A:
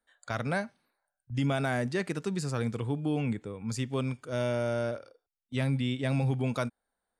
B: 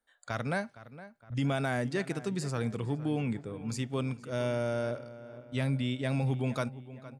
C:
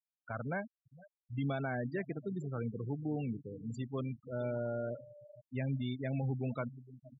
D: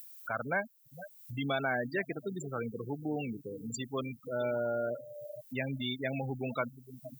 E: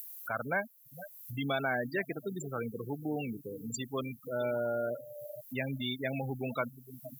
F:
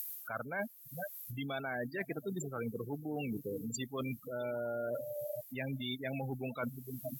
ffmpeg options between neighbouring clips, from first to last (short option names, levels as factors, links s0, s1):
-filter_complex "[0:a]asplit=2[s0][s1];[s1]adelay=463,lowpass=f=2600:p=1,volume=0.168,asplit=2[s2][s3];[s3]adelay=463,lowpass=f=2600:p=1,volume=0.52,asplit=2[s4][s5];[s5]adelay=463,lowpass=f=2600:p=1,volume=0.52,asplit=2[s6][s7];[s7]adelay=463,lowpass=f=2600:p=1,volume=0.52,asplit=2[s8][s9];[s9]adelay=463,lowpass=f=2600:p=1,volume=0.52[s10];[s0][s2][s4][s6][s8][s10]amix=inputs=6:normalize=0,volume=0.841"
-af "afftfilt=real='re*gte(hypot(re,im),0.0316)':imag='im*gte(hypot(re,im),0.0316)':win_size=1024:overlap=0.75,volume=0.562"
-af "aemphasis=mode=production:type=riaa,acompressor=mode=upward:threshold=0.00708:ratio=2.5,volume=2.24"
-af "equalizer=f=13000:w=1.8:g=15"
-af "areverse,acompressor=threshold=0.00891:ratio=8,areverse,volume=2" -ar 48000 -c:a aac -b:a 64k